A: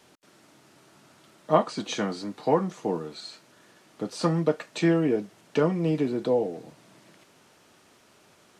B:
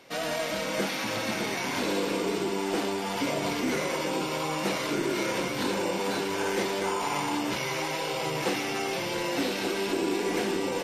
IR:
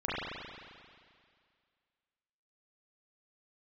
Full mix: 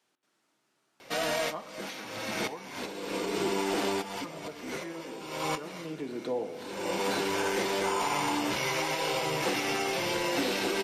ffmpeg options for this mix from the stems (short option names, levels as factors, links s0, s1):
-filter_complex "[0:a]highpass=f=410:p=1,equalizer=f=570:t=o:w=0.77:g=-3,volume=0.562,afade=t=in:st=5.66:d=0.57:silence=0.251189,asplit=3[s0][s1][s2];[s1]volume=0.141[s3];[1:a]equalizer=f=190:t=o:w=1.8:g=-3,adelay=1000,volume=1.41[s4];[s2]apad=whole_len=521920[s5];[s4][s5]sidechaincompress=threshold=0.00112:ratio=8:attack=12:release=304[s6];[2:a]atrim=start_sample=2205[s7];[s3][s7]afir=irnorm=-1:irlink=0[s8];[s0][s6][s8]amix=inputs=3:normalize=0,alimiter=limit=0.1:level=0:latency=1:release=137"